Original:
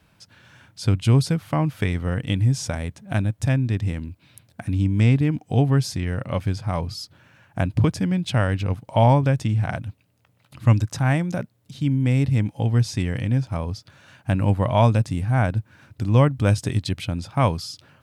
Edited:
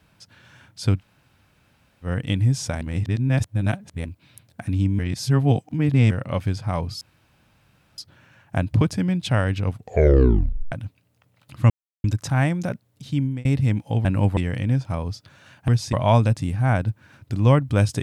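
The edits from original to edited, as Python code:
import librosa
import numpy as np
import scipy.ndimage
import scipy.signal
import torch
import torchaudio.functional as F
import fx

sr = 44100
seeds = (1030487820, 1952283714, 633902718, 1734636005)

y = fx.edit(x, sr, fx.room_tone_fill(start_s=0.98, length_s=1.08, crossfade_s=0.1),
    fx.reverse_span(start_s=2.81, length_s=1.24),
    fx.reverse_span(start_s=4.99, length_s=1.12),
    fx.insert_room_tone(at_s=7.01, length_s=0.97),
    fx.tape_stop(start_s=8.73, length_s=1.02),
    fx.insert_silence(at_s=10.73, length_s=0.34),
    fx.fade_out_span(start_s=11.78, length_s=0.36, curve='qsin'),
    fx.swap(start_s=12.74, length_s=0.25, other_s=14.3, other_length_s=0.32), tone=tone)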